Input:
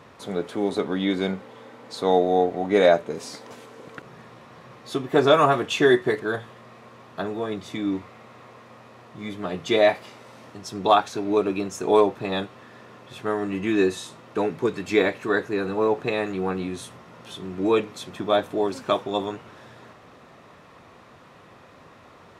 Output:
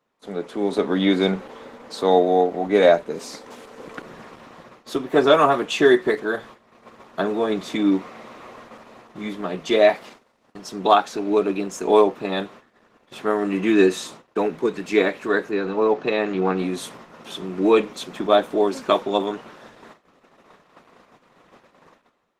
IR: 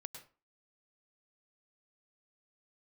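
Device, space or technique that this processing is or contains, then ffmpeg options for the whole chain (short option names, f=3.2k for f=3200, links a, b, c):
video call: -filter_complex "[0:a]asettb=1/sr,asplit=3[a][b][c];[a]atrim=end=15.514[d];[b]atrim=start=15.51:end=16.59,asetpts=PTS-STARTPTS,afade=t=in:d=0.004:c=qsin,afade=t=out:st=1.076:d=0.004:c=qsin,lowpass=f=6.2k:w=0.5412,lowpass=f=6.2k:w=1.3066[e];[c]atrim=start=16.586[f];[d][e]acrossfade=d=0.004:c1=hsin:c2=qsin[g];[g][f]acrossfade=d=0.004:c1=qsin:c2=hsin,highpass=f=170:w=0.5412,highpass=f=170:w=1.3066,dynaudnorm=f=500:g=3:m=9dB,agate=range=-22dB:threshold=-39dB:ratio=16:detection=peak,volume=-1.5dB" -ar 48000 -c:a libopus -b:a 16k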